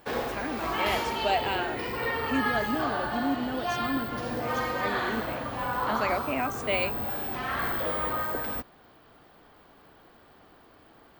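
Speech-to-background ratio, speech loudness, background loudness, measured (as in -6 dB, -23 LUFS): -2.5 dB, -32.5 LUFS, -30.0 LUFS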